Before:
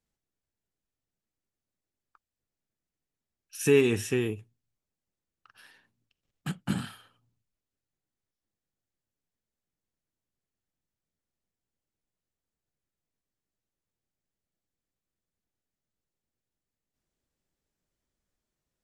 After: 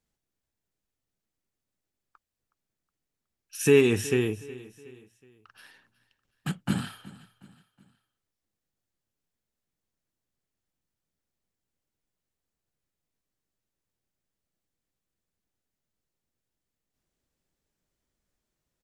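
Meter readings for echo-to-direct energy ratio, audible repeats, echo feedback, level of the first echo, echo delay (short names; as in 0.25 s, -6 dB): -18.0 dB, 3, 44%, -19.0 dB, 0.368 s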